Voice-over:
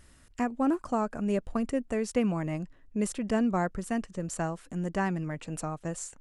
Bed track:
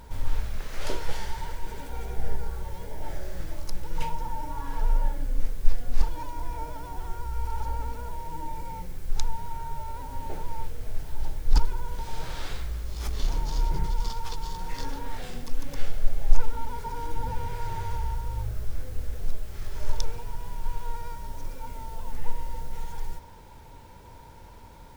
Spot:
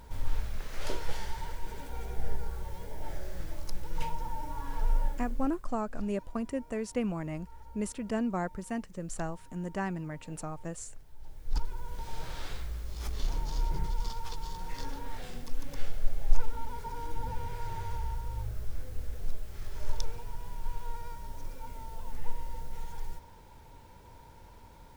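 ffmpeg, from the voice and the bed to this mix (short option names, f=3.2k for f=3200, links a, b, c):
-filter_complex "[0:a]adelay=4800,volume=-4.5dB[a];[1:a]volume=10.5dB,afade=t=out:st=5.01:d=0.65:silence=0.16788,afade=t=in:st=11.2:d=0.88:silence=0.188365[b];[a][b]amix=inputs=2:normalize=0"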